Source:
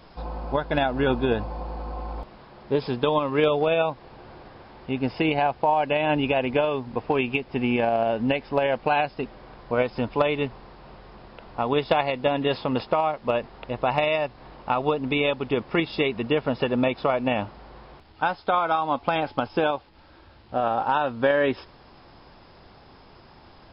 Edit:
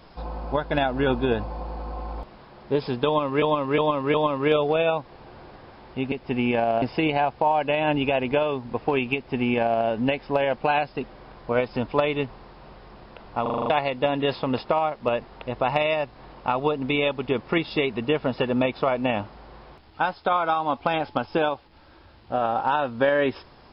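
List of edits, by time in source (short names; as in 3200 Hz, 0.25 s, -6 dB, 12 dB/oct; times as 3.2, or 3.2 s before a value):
3.06–3.42 loop, 4 plays
7.37–8.07 copy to 5.04
11.64 stutter in place 0.04 s, 7 plays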